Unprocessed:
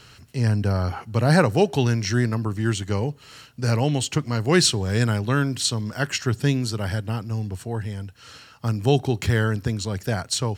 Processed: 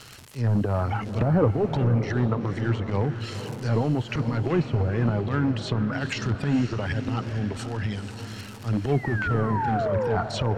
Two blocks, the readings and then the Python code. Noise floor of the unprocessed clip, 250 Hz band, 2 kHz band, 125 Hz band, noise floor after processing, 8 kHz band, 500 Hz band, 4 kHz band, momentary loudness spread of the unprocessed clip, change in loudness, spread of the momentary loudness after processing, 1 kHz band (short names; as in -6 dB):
-50 dBFS, -1.5 dB, -4.5 dB, -2.0 dB, -40 dBFS, -17.0 dB, -2.0 dB, -10.5 dB, 12 LU, -2.5 dB, 7 LU, 0.0 dB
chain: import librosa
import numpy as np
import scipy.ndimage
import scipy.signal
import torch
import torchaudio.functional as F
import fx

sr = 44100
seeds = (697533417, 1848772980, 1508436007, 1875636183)

p1 = fx.dereverb_blind(x, sr, rt60_s=1.1)
p2 = fx.transient(p1, sr, attack_db=-11, sustain_db=10)
p3 = fx.spec_paint(p2, sr, seeds[0], shape='fall', start_s=8.92, length_s=1.25, low_hz=420.0, high_hz=2300.0, level_db=-27.0)
p4 = fx.dmg_crackle(p3, sr, seeds[1], per_s=280.0, level_db=-32.0)
p5 = (np.mod(10.0 ** (17.0 / 20.0) * p4 + 1.0, 2.0) - 1.0) / 10.0 ** (17.0 / 20.0)
p6 = p4 + (p5 * 10.0 ** (-9.5 / 20.0))
p7 = fx.env_lowpass_down(p6, sr, base_hz=730.0, full_db=-16.5)
p8 = p7 + fx.echo_diffused(p7, sr, ms=479, feedback_pct=50, wet_db=-9.0, dry=0)
y = p8 * 10.0 ** (-1.5 / 20.0)